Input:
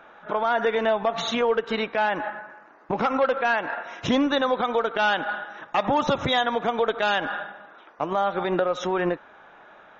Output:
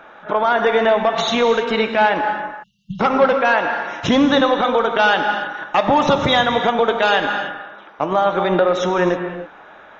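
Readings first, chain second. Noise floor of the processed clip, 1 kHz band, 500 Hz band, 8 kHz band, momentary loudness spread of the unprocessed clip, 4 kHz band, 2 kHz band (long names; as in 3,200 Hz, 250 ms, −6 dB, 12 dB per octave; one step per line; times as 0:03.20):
−43 dBFS, +7.5 dB, +7.5 dB, can't be measured, 9 LU, +7.5 dB, +7.5 dB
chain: reverb whose tail is shaped and stops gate 340 ms flat, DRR 6 dB
time-frequency box erased 0:02.63–0:03.00, 210–2,700 Hz
level +6.5 dB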